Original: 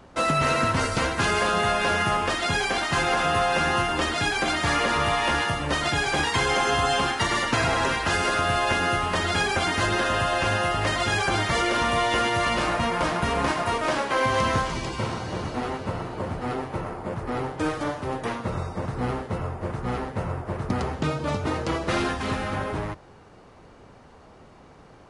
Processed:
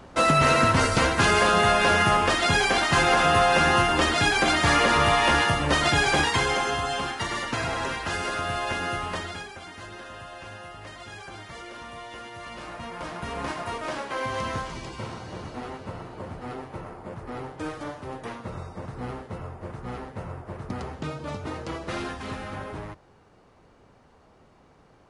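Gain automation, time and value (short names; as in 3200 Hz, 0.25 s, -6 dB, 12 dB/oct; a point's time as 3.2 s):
6.11 s +3 dB
6.85 s -5.5 dB
9.13 s -5.5 dB
9.53 s -17.5 dB
12.3 s -17.5 dB
13.49 s -7 dB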